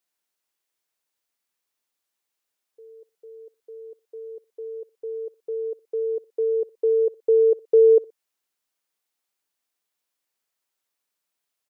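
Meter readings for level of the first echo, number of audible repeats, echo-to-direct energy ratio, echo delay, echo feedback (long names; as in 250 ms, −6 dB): −23.0 dB, 2, −22.5 dB, 61 ms, 32%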